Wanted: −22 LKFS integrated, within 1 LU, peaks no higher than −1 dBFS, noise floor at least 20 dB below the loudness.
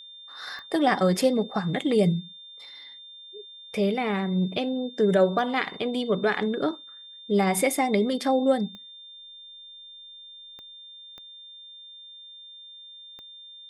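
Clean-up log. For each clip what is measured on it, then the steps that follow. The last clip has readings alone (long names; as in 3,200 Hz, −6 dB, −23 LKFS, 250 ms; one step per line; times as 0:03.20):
number of clicks 6; interfering tone 3,600 Hz; level of the tone −43 dBFS; integrated loudness −25.0 LKFS; sample peak −9.5 dBFS; target loudness −22.0 LKFS
→ click removal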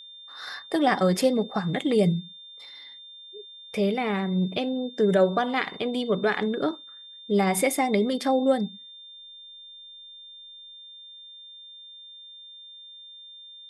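number of clicks 0; interfering tone 3,600 Hz; level of the tone −43 dBFS
→ notch filter 3,600 Hz, Q 30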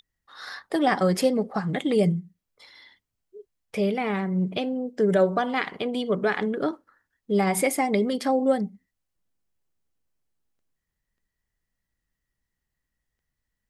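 interfering tone none found; integrated loudness −25.0 LKFS; sample peak −9.5 dBFS; target loudness −22.0 LKFS
→ level +3 dB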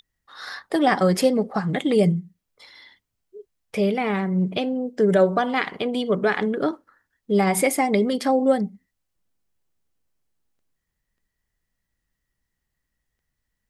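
integrated loudness −22.0 LKFS; sample peak −6.5 dBFS; background noise floor −80 dBFS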